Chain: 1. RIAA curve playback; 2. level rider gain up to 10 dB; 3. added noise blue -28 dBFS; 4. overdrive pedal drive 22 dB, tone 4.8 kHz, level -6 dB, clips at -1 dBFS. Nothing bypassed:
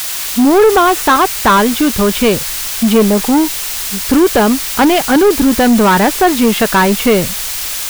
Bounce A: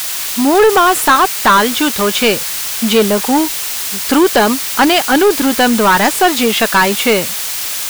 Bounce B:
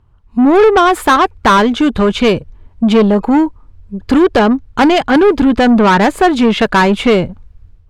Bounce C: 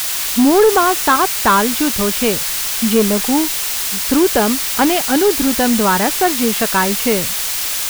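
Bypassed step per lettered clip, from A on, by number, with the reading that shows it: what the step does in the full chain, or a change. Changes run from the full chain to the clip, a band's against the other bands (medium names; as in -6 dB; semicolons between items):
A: 1, 125 Hz band -6.5 dB; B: 3, 4 kHz band -3.5 dB; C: 2, 8 kHz band +5.0 dB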